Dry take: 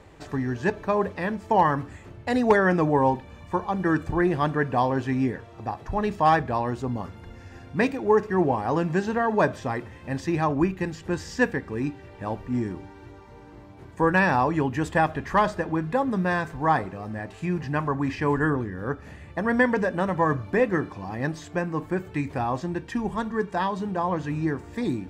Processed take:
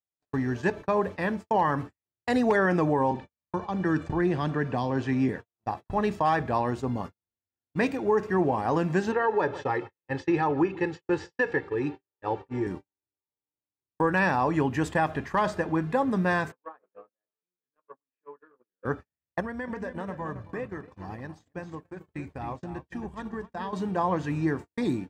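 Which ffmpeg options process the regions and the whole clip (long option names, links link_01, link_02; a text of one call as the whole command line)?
ffmpeg -i in.wav -filter_complex "[0:a]asettb=1/sr,asplit=3[link_01][link_02][link_03];[link_01]atrim=end=3.114[link_04];[link_02]atrim=start=3.11:end=5.29,asetpts=PTS-STARTPTS,afade=type=in:duration=0.004:curve=qsin,afade=type=out:start_time=2.176:duration=0.004:curve=qsin,lowpass=7000,acrossover=split=320|3000[link_05][link_06][link_07];[link_06]acompressor=threshold=-28dB:ratio=4:attack=3.2:release=140:knee=2.83:detection=peak[link_08];[link_05][link_08][link_07]amix=inputs=3:normalize=0[link_09];[link_03]atrim=start=5.286[link_10];[link_04][link_09]acrossfade=duration=0.004:curve1=hsin:curve2=qsin[link_11];[link_11][link_10]acrossfade=duration=0.004:curve1=qsin:curve2=hsin,asettb=1/sr,asplit=3[link_12][link_13][link_14];[link_12]atrim=end=9.124[link_15];[link_13]atrim=start=9.12:end=12.67,asetpts=PTS-STARTPTS,afade=type=in:duration=0.004:curve=qsin,afade=type=out:start_time=3.546:duration=0.004:curve=qsin,highpass=130,lowpass=3900,aecho=1:1:2.3:0.75,atrim=end_sample=156555,aecho=1:1:151:0.0891,atrim=end_sample=156555[link_16];[link_14]atrim=start=12.666[link_17];[link_15][link_16]acrossfade=duration=0.004:curve1=hsin:curve2=qsin[link_18];[link_18][link_17]acrossfade=duration=0.004:curve1=qsin:curve2=hsin,asettb=1/sr,asplit=3[link_19][link_20][link_21];[link_19]atrim=end=16.524[link_22];[link_20]atrim=start=16.52:end=18.85,asetpts=PTS-STARTPTS,afade=type=in:duration=0.004:curve=qsin,afade=type=out:start_time=2.326:duration=0.004:curve=qsin,acompressor=threshold=-34dB:ratio=12:attack=3.2:release=140:knee=1:detection=peak,highpass=370,equalizer=frequency=500:width_type=q:width=4:gain=9,equalizer=frequency=770:width_type=q:width=4:gain=-6,equalizer=frequency=1300:width_type=q:width=4:gain=6,equalizer=frequency=2000:width_type=q:width=4:gain=-8,lowpass=frequency=2600:width=0.5412,lowpass=frequency=2600:width=1.3066,asplit=2[link_23][link_24];[link_24]adelay=16,volume=-6dB[link_25];[link_23][link_25]amix=inputs=2:normalize=0,atrim=end_sample=102753[link_26];[link_21]atrim=start=18.846[link_27];[link_22][link_26]acrossfade=duration=0.004:curve1=hsin:curve2=qsin[link_28];[link_28][link_27]acrossfade=duration=0.004:curve1=qsin:curve2=hsin,asettb=1/sr,asplit=3[link_29][link_30][link_31];[link_29]atrim=end=19.404[link_32];[link_30]atrim=start=19.4:end=23.73,asetpts=PTS-STARTPTS,afade=type=in:duration=0.004:curve=qsin,afade=type=out:start_time=4.326:duration=0.004:curve=qsin,equalizer=frequency=64:width=1.6:gain=13.5,acompressor=threshold=-30dB:ratio=10:attack=3.2:release=140:knee=1:detection=peak,asplit=2[link_33][link_34];[link_34]adelay=274,lowpass=frequency=3500:poles=1,volume=-8dB,asplit=2[link_35][link_36];[link_36]adelay=274,lowpass=frequency=3500:poles=1,volume=0.36,asplit=2[link_37][link_38];[link_38]adelay=274,lowpass=frequency=3500:poles=1,volume=0.36,asplit=2[link_39][link_40];[link_40]adelay=274,lowpass=frequency=3500:poles=1,volume=0.36[link_41];[link_33][link_35][link_37][link_39][link_41]amix=inputs=5:normalize=0,atrim=end_sample=190953[link_42];[link_31]atrim=start=23.726[link_43];[link_32][link_42]acrossfade=duration=0.004:curve1=hsin:curve2=qsin[link_44];[link_44][link_43]acrossfade=duration=0.004:curve1=qsin:curve2=hsin,highpass=frequency=87:poles=1,agate=range=-55dB:threshold=-34dB:ratio=16:detection=peak,alimiter=limit=-15dB:level=0:latency=1:release=84" out.wav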